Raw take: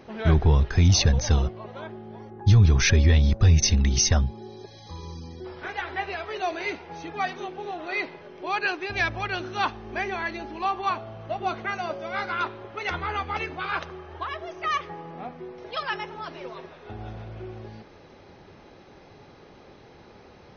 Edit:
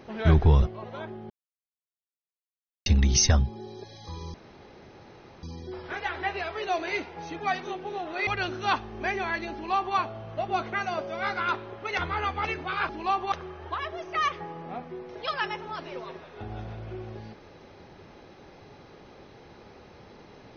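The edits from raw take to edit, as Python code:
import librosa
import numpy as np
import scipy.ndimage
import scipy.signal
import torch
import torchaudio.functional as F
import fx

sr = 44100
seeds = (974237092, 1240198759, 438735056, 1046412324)

y = fx.edit(x, sr, fx.cut(start_s=0.62, length_s=0.82),
    fx.silence(start_s=2.12, length_s=1.56),
    fx.insert_room_tone(at_s=5.16, length_s=1.09),
    fx.cut(start_s=8.0, length_s=1.19),
    fx.duplicate(start_s=10.45, length_s=0.43, to_s=13.81), tone=tone)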